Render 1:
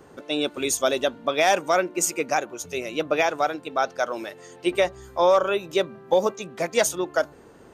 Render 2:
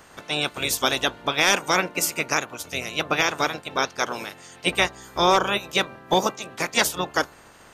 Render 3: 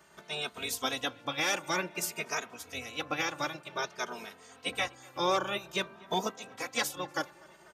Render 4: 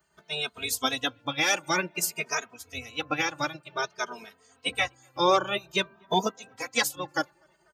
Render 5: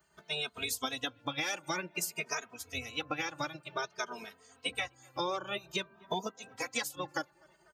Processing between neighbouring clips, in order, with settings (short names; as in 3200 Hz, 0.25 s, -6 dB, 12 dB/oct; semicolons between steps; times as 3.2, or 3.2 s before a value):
spectral limiter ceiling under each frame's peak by 20 dB
HPF 76 Hz; tape echo 0.246 s, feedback 83%, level -23.5 dB, low-pass 3500 Hz; endless flanger 2.9 ms +0.53 Hz; gain -7.5 dB
per-bin expansion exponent 1.5; gain +8 dB
compressor 6:1, threshold -32 dBFS, peak gain reduction 14.5 dB